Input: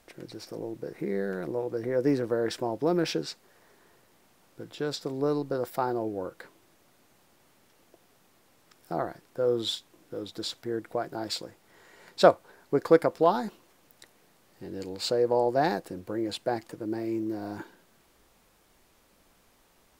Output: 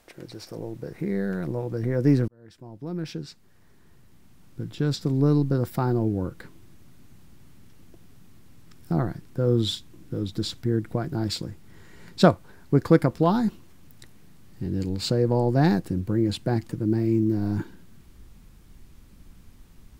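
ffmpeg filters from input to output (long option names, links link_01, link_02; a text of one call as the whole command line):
ffmpeg -i in.wav -filter_complex "[0:a]asplit=2[link_01][link_02];[link_01]atrim=end=2.28,asetpts=PTS-STARTPTS,afade=type=out:start_time=2.276:duration=0.004:curve=hsin[link_03];[link_02]atrim=start=2.28,asetpts=PTS-STARTPTS,afade=type=in:duration=2.69[link_04];[link_03][link_04]concat=n=2:v=0:a=1,asubboost=boost=10.5:cutoff=180,volume=2dB" out.wav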